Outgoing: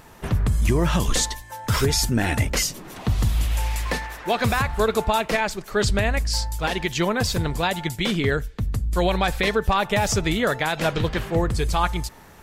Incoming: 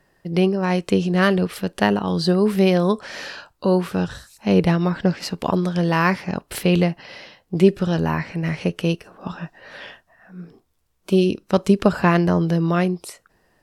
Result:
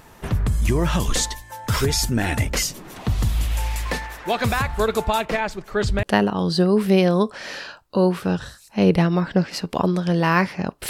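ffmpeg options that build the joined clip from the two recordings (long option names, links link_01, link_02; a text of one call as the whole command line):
ffmpeg -i cue0.wav -i cue1.wav -filter_complex "[0:a]asettb=1/sr,asplit=3[link_01][link_02][link_03];[link_01]atrim=end=5.254[link_04];[link_02]atrim=start=5.25:end=6.03,asetpts=PTS-STARTPTS,afade=type=in:duration=0.004:curve=qsin,afade=type=out:start_time=0.776:duration=0.004:curve=qsin,highshelf=frequency=4300:gain=-10.5[link_05];[link_03]atrim=start=6.026[link_06];[link_04][link_05]acrossfade=duration=0.004:curve1=hsin:curve2=qsin[link_07];[link_07][link_06]acrossfade=duration=0.004:curve1=qsin:curve2=hsin,apad=whole_dur=10.89,atrim=end=10.89,atrim=end=6.032[link_08];[1:a]atrim=start=1.718:end=6.58[link_09];[link_08][link_09]acrossfade=duration=0.004:curve1=hsin:curve2=hsin" out.wav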